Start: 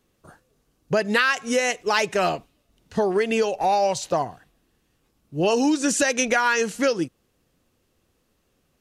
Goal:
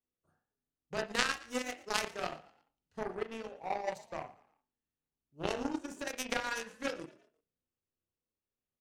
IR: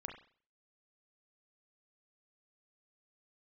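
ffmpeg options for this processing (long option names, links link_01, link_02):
-filter_complex "[0:a]asplit=3[link_01][link_02][link_03];[link_01]afade=type=out:start_time=5.52:duration=0.02[link_04];[link_02]equalizer=frequency=4900:width=0.36:gain=-7.5,afade=type=in:start_time=5.52:duration=0.02,afade=type=out:start_time=6.06:duration=0.02[link_05];[link_03]afade=type=in:start_time=6.06:duration=0.02[link_06];[link_04][link_05][link_06]amix=inputs=3:normalize=0[link_07];[1:a]atrim=start_sample=2205[link_08];[link_07][link_08]afir=irnorm=-1:irlink=0,aeval=exprs='0.355*(cos(1*acos(clip(val(0)/0.355,-1,1)))-cos(1*PI/2))+0.112*(cos(3*acos(clip(val(0)/0.355,-1,1)))-cos(3*PI/2))':channel_layout=same,asettb=1/sr,asplit=3[link_09][link_10][link_11];[link_09]atrim=end=3.154[link_12];[link_10]atrim=start=3.15:end=3.87,asetpts=PTS-STARTPTS,afade=type=in:duration=0.004:curve=qsin,afade=type=out:start_time=0.716:duration=0.004:curve=qsin,highshelf=frequency=2300:gain=-9.5[link_13];[link_11]atrim=start=3.866[link_14];[link_12][link_13]acrossfade=duration=0.004:curve1=hsin:curve2=qsin[link_15];[link_15][link_14]acrossfade=duration=0.004:curve1=qsin:curve2=hsin,asplit=4[link_16][link_17][link_18][link_19];[link_17]adelay=115,afreqshift=44,volume=-20dB[link_20];[link_18]adelay=230,afreqshift=88,volume=-28dB[link_21];[link_19]adelay=345,afreqshift=132,volume=-35.9dB[link_22];[link_16][link_20][link_21][link_22]amix=inputs=4:normalize=0"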